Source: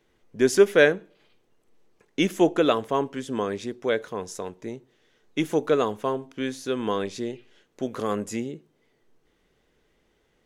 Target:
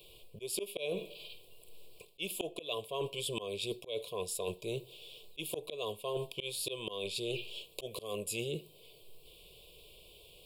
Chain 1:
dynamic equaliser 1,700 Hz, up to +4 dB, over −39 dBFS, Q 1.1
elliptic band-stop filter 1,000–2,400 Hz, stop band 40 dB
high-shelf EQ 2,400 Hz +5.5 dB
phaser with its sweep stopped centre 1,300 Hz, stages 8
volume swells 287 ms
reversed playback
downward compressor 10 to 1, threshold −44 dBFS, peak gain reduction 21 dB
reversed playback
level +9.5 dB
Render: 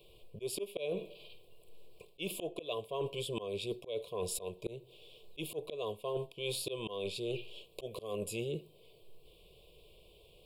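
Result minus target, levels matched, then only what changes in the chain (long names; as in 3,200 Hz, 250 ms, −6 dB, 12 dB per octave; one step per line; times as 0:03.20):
4,000 Hz band −3.0 dB
change: high-shelf EQ 2,400 Hz +16.5 dB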